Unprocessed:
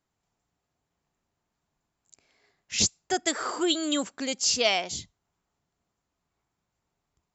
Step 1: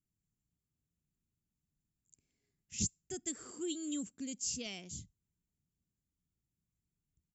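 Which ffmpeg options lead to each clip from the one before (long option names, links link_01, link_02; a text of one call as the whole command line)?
ffmpeg -i in.wav -af "firequalizer=gain_entry='entry(170,0);entry(640,-25);entry(920,-26);entry(2800,-15);entry(4000,-19);entry(7300,-5)':delay=0.05:min_phase=1,volume=-3dB" out.wav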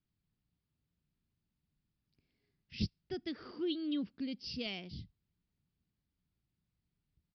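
ffmpeg -i in.wav -af "aresample=11025,aresample=44100,volume=3.5dB" out.wav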